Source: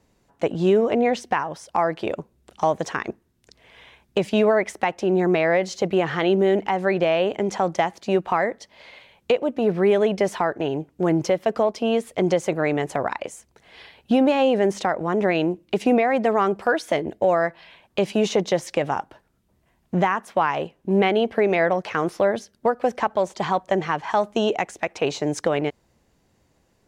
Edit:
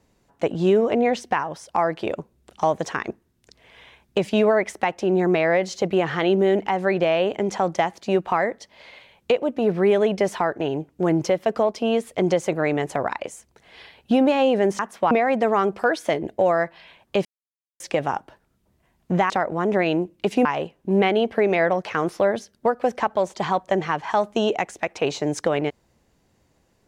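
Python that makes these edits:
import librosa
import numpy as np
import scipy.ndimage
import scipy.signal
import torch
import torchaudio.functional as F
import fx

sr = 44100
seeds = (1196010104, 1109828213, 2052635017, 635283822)

y = fx.edit(x, sr, fx.swap(start_s=14.79, length_s=1.15, other_s=20.13, other_length_s=0.32),
    fx.silence(start_s=18.08, length_s=0.55), tone=tone)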